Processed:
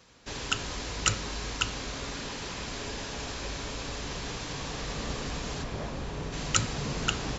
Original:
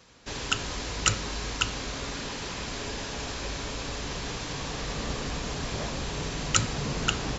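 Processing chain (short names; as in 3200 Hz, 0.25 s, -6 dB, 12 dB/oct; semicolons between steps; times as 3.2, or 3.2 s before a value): 5.62–6.32 high shelf 2900 Hz -> 2200 Hz -10 dB; gain -2 dB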